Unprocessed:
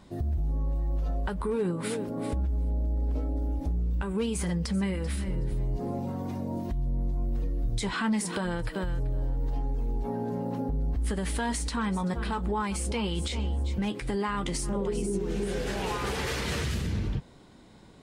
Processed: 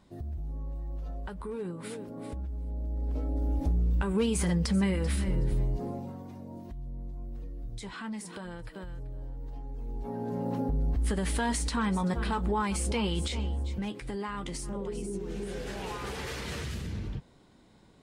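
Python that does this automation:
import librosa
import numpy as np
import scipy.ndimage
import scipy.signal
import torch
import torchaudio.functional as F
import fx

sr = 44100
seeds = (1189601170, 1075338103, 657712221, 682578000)

y = fx.gain(x, sr, db=fx.line((2.61, -8.0), (3.61, 2.0), (5.59, 2.0), (6.28, -10.5), (9.64, -10.5), (10.5, 0.5), (13.09, 0.5), (14.03, -6.0)))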